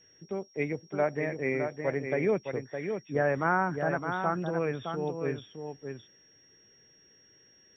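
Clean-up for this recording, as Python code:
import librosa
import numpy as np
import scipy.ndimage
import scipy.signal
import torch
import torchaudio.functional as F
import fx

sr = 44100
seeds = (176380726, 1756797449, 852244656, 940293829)

y = fx.notch(x, sr, hz=5600.0, q=30.0)
y = fx.fix_echo_inverse(y, sr, delay_ms=613, level_db=-6.5)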